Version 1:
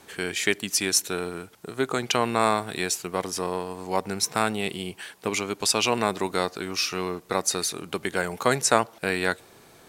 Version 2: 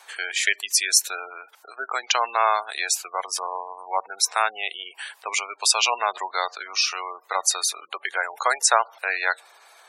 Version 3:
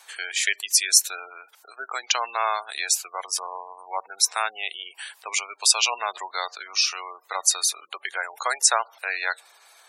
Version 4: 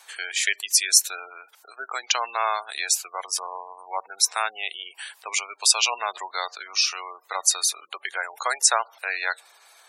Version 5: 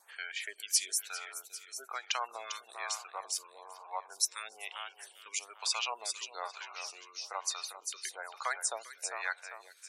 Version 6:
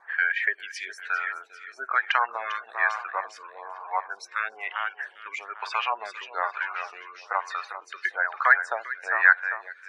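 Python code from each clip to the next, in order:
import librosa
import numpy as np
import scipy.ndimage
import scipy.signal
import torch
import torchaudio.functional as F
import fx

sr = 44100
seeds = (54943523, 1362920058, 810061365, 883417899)

y1 = fx.spec_gate(x, sr, threshold_db=-20, keep='strong')
y1 = scipy.signal.sosfilt(scipy.signal.butter(4, 710.0, 'highpass', fs=sr, output='sos'), y1)
y1 = F.gain(torch.from_numpy(y1), 4.5).numpy()
y2 = fx.high_shelf(y1, sr, hz=2600.0, db=8.0)
y2 = F.gain(torch.from_numpy(y2), -5.5).numpy()
y3 = y2
y4 = fx.wow_flutter(y3, sr, seeds[0], rate_hz=2.1, depth_cents=34.0)
y4 = fx.echo_feedback(y4, sr, ms=398, feedback_pct=44, wet_db=-10.0)
y4 = fx.stagger_phaser(y4, sr, hz=1.1)
y4 = F.gain(torch.from_numpy(y4), -8.5).numpy()
y5 = fx.spec_quant(y4, sr, step_db=15)
y5 = fx.lowpass_res(y5, sr, hz=1700.0, q=5.2)
y5 = F.gain(torch.from_numpy(y5), 8.5).numpy()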